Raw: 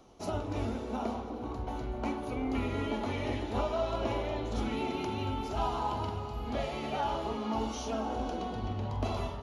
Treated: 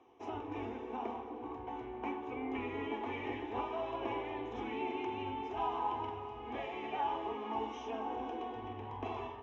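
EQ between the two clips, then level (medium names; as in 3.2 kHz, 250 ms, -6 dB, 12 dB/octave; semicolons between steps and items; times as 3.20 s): cabinet simulation 140–4900 Hz, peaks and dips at 620 Hz +6 dB, 1.3 kHz +9 dB, 2 kHz +3 dB; static phaser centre 900 Hz, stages 8; band-stop 2 kHz, Q 16; -3.0 dB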